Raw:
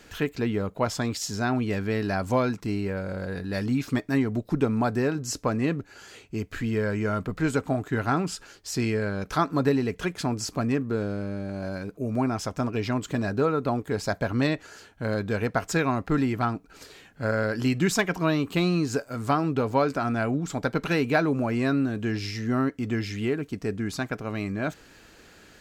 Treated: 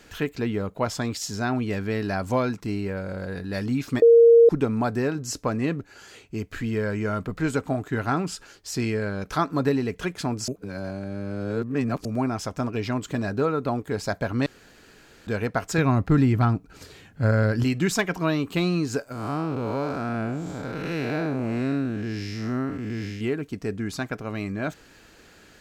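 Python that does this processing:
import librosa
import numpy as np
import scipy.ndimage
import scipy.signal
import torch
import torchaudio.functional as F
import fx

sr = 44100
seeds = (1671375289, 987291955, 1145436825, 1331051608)

y = fx.peak_eq(x, sr, hz=93.0, db=11.5, octaves=2.3, at=(15.78, 17.64))
y = fx.spec_blur(y, sr, span_ms=213.0, at=(19.12, 23.21))
y = fx.edit(y, sr, fx.bleep(start_s=4.02, length_s=0.47, hz=465.0, db=-9.5),
    fx.reverse_span(start_s=10.48, length_s=1.57),
    fx.room_tone_fill(start_s=14.46, length_s=0.81), tone=tone)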